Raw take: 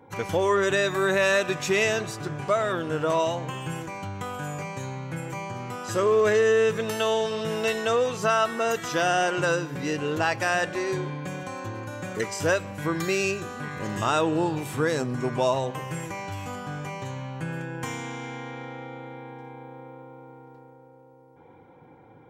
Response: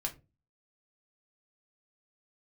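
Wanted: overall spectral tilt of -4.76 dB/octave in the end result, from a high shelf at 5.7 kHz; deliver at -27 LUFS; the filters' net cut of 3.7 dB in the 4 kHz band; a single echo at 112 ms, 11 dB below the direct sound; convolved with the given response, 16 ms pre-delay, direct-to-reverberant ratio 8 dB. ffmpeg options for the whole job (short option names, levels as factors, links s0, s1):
-filter_complex "[0:a]equalizer=f=4000:t=o:g=-7,highshelf=f=5700:g=5,aecho=1:1:112:0.282,asplit=2[s0][s1];[1:a]atrim=start_sample=2205,adelay=16[s2];[s1][s2]afir=irnorm=-1:irlink=0,volume=0.335[s3];[s0][s3]amix=inputs=2:normalize=0,volume=0.841"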